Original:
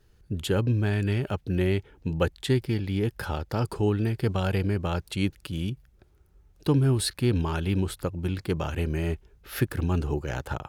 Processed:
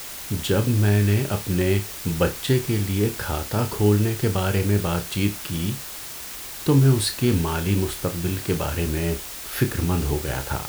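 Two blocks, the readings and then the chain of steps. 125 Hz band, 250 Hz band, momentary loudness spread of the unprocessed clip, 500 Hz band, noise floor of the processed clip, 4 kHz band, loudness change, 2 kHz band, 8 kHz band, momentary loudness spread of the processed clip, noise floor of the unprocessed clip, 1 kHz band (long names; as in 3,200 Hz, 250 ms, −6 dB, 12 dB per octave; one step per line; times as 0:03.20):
+4.5 dB, +4.5 dB, 8 LU, +4.5 dB, −36 dBFS, +6.5 dB, +4.5 dB, +5.0 dB, +11.0 dB, 9 LU, −61 dBFS, +4.5 dB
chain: flutter between parallel walls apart 5 metres, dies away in 0.22 s
background noise white −39 dBFS
level +3.5 dB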